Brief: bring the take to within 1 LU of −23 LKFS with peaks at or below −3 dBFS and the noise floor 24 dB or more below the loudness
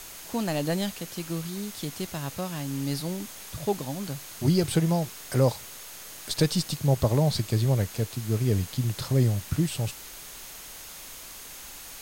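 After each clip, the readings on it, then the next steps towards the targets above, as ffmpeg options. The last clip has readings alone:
interfering tone 6,500 Hz; level of the tone −52 dBFS; background noise floor −43 dBFS; target noise floor −52 dBFS; integrated loudness −28.0 LKFS; sample peak −10.5 dBFS; target loudness −23.0 LKFS
→ -af "bandreject=frequency=6500:width=30"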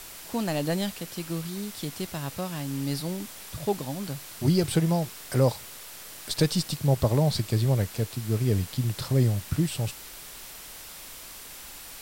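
interfering tone none found; background noise floor −43 dBFS; target noise floor −52 dBFS
→ -af "afftdn=noise_reduction=9:noise_floor=-43"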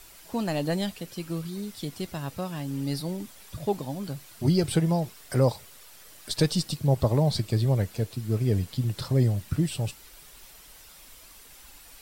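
background noise floor −50 dBFS; target noise floor −52 dBFS
→ -af "afftdn=noise_reduction=6:noise_floor=-50"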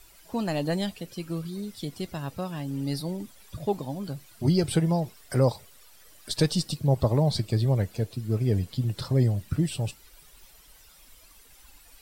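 background noise floor −55 dBFS; integrated loudness −28.0 LKFS; sample peak −10.5 dBFS; target loudness −23.0 LKFS
→ -af "volume=5dB"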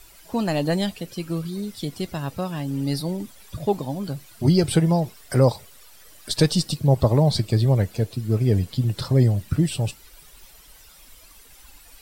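integrated loudness −23.0 LKFS; sample peak −5.5 dBFS; background noise floor −50 dBFS

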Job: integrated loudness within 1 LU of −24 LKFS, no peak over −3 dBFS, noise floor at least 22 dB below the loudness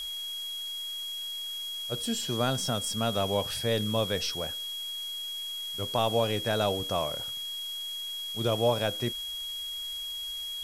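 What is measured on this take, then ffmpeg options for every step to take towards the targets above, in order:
interfering tone 3,300 Hz; level of the tone −34 dBFS; background noise floor −37 dBFS; target noise floor −53 dBFS; integrated loudness −30.5 LKFS; sample peak −13.0 dBFS; target loudness −24.0 LKFS
→ -af "bandreject=frequency=3300:width=30"
-af "afftdn=noise_reduction=16:noise_floor=-37"
-af "volume=6.5dB"

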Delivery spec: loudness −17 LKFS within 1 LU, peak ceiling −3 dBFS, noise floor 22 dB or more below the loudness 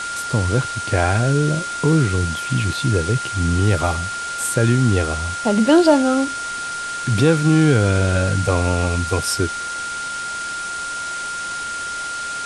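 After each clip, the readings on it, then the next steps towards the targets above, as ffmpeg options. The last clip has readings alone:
interfering tone 1,400 Hz; level of the tone −25 dBFS; background noise floor −27 dBFS; target noise floor −42 dBFS; integrated loudness −19.5 LKFS; sample peak −2.5 dBFS; target loudness −17.0 LKFS
→ -af "bandreject=frequency=1400:width=30"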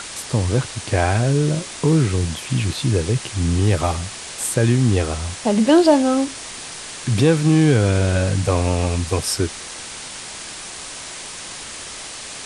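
interfering tone none found; background noise floor −34 dBFS; target noise floor −41 dBFS
→ -af "afftdn=noise_reduction=7:noise_floor=-34"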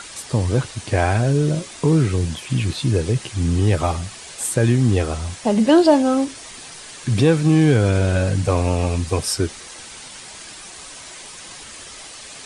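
background noise floor −38 dBFS; target noise floor −41 dBFS
→ -af "afftdn=noise_reduction=6:noise_floor=-38"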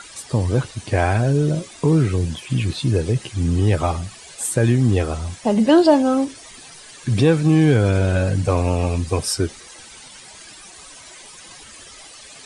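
background noise floor −42 dBFS; integrated loudness −19.0 LKFS; sample peak −3.0 dBFS; target loudness −17.0 LKFS
→ -af "volume=2dB,alimiter=limit=-3dB:level=0:latency=1"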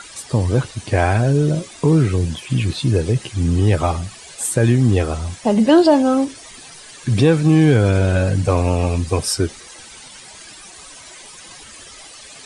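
integrated loudness −17.5 LKFS; sample peak −3.0 dBFS; background noise floor −40 dBFS

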